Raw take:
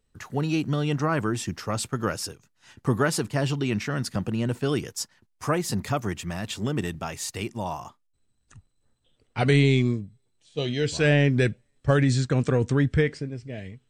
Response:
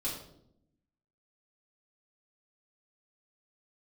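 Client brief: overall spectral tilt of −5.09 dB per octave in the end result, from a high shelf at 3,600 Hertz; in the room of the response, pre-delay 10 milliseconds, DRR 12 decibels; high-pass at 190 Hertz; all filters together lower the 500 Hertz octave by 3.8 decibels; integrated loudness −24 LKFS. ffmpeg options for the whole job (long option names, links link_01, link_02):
-filter_complex "[0:a]highpass=190,equalizer=frequency=500:width_type=o:gain=-4.5,highshelf=frequency=3600:gain=-3,asplit=2[link_01][link_02];[1:a]atrim=start_sample=2205,adelay=10[link_03];[link_02][link_03]afir=irnorm=-1:irlink=0,volume=-15dB[link_04];[link_01][link_04]amix=inputs=2:normalize=0,volume=5dB"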